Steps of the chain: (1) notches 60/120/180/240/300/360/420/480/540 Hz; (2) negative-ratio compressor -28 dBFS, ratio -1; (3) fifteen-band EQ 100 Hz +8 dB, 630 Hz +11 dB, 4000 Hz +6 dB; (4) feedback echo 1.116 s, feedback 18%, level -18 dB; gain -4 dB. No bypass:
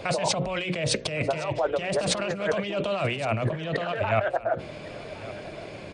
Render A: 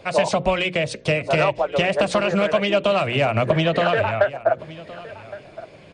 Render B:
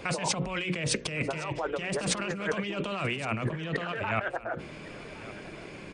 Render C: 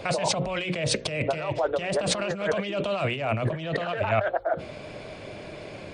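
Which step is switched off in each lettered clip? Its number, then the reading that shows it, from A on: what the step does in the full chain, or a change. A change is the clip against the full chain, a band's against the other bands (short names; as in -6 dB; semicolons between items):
2, momentary loudness spread change +5 LU; 3, 500 Hz band -5.0 dB; 4, momentary loudness spread change +2 LU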